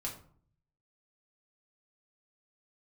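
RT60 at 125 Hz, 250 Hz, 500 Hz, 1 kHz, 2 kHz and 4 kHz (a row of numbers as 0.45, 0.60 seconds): 0.95, 0.70, 0.55, 0.55, 0.35, 0.30 seconds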